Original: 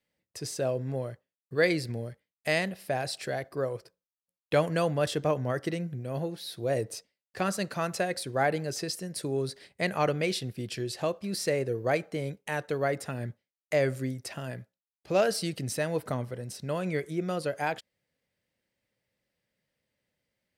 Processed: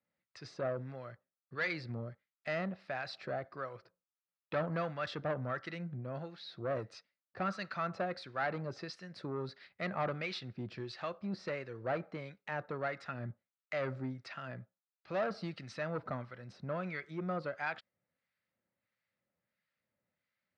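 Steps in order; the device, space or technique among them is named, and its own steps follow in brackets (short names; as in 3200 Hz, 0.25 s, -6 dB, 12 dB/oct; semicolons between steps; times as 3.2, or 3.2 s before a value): guitar amplifier with harmonic tremolo (harmonic tremolo 1.5 Hz, depth 70%, crossover 1100 Hz; soft clip -26.5 dBFS, distortion -12 dB; speaker cabinet 95–4100 Hz, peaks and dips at 140 Hz -3 dB, 300 Hz -4 dB, 440 Hz -7 dB, 1300 Hz +8 dB, 3100 Hz -6 dB); gain -1.5 dB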